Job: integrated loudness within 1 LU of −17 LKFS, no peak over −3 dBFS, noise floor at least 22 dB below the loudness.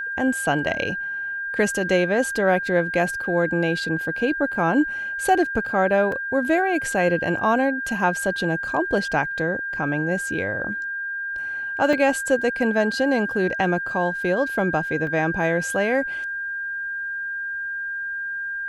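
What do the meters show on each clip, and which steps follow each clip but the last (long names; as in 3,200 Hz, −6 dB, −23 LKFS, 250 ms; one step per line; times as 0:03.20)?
number of dropouts 3; longest dropout 3.1 ms; interfering tone 1,600 Hz; level of the tone −26 dBFS; integrated loudness −22.5 LKFS; sample peak −6.5 dBFS; target loudness −17.0 LKFS
→ repair the gap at 0:06.12/0:11.93/0:15.07, 3.1 ms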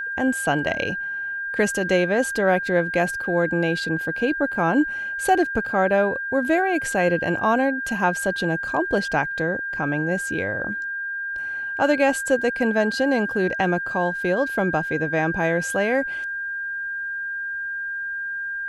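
number of dropouts 0; interfering tone 1,600 Hz; level of the tone −26 dBFS
→ notch filter 1,600 Hz, Q 30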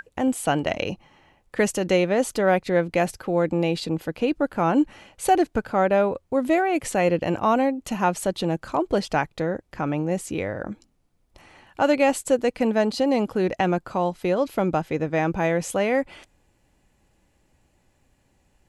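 interfering tone none found; integrated loudness −23.5 LKFS; sample peak −7.0 dBFS; target loudness −17.0 LKFS
→ level +6.5 dB
brickwall limiter −3 dBFS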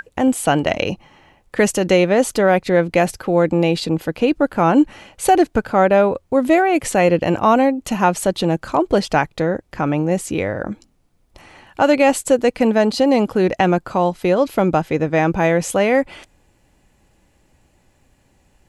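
integrated loudness −17.5 LKFS; sample peak −3.0 dBFS; background noise floor −59 dBFS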